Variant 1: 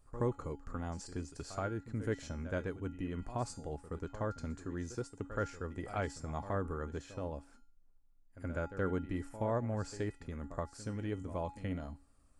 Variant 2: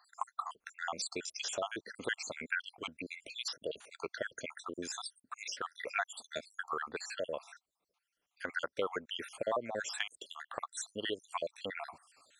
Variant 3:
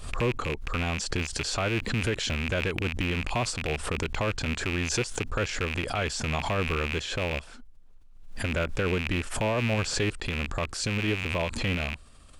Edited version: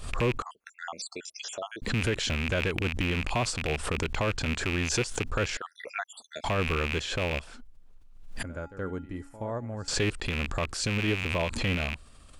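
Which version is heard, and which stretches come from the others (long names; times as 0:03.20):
3
0:00.42–0:01.82: punch in from 2
0:05.57–0:06.44: punch in from 2
0:08.43–0:09.88: punch in from 1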